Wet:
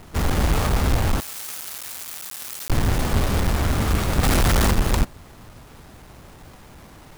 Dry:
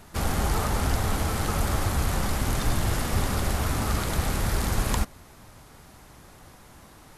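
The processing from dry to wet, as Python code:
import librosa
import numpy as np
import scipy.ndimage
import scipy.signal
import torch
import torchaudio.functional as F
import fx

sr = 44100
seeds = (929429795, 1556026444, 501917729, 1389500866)

y = fx.halfwave_hold(x, sr)
y = fx.differentiator(y, sr, at=(1.2, 2.7))
y = fx.leveller(y, sr, passes=3, at=(4.23, 4.71))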